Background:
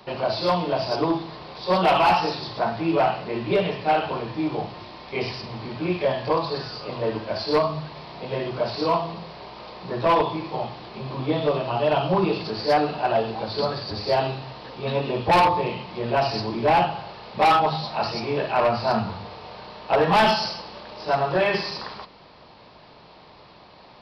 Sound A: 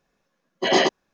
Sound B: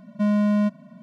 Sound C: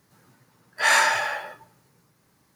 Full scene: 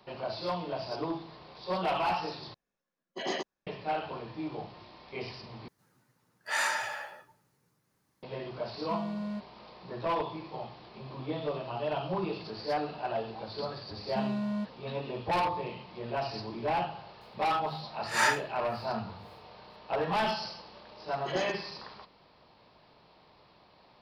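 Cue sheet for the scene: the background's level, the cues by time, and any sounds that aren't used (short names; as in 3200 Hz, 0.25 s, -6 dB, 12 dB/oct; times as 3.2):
background -11.5 dB
2.54 replace with A -15.5 dB
5.68 replace with C -11 dB
8.71 add B -16 dB
13.96 add B -12.5 dB
17.21 add C -3 dB + dB-linear tremolo 1.9 Hz, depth 32 dB
20.63 add A -17 dB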